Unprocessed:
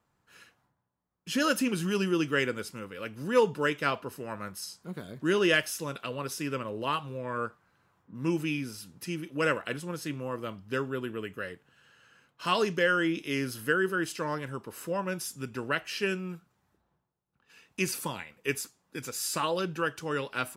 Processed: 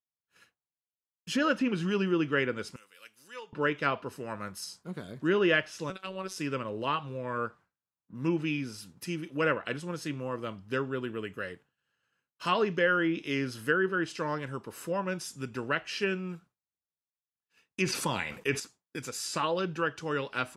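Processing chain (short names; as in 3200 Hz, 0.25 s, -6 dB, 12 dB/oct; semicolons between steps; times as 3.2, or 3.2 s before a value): treble ducked by the level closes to 2700 Hz, closed at -23.5 dBFS; expander -48 dBFS; 2.76–3.53 differentiator; 5.9–6.36 robotiser 189 Hz; 17.82–18.6 fast leveller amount 50%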